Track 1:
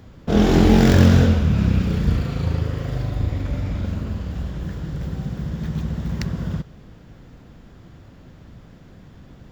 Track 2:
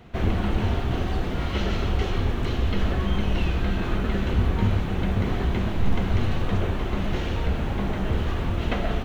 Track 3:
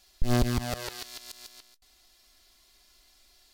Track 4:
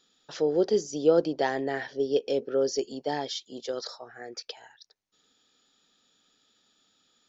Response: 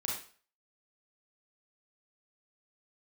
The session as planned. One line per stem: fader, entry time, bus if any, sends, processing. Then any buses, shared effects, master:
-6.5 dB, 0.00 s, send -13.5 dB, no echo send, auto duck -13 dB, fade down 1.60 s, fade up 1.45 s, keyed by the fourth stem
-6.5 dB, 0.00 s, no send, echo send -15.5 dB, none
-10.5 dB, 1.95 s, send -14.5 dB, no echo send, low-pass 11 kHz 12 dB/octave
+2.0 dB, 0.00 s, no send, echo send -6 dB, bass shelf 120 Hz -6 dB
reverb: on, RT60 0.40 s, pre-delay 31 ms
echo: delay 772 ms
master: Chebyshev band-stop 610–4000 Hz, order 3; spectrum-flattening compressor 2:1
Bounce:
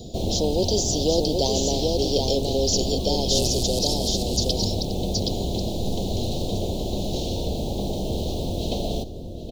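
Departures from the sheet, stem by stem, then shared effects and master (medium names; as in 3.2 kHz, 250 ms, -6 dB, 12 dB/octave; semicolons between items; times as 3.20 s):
stem 1: muted; stem 3: entry 1.95 s -> 3.05 s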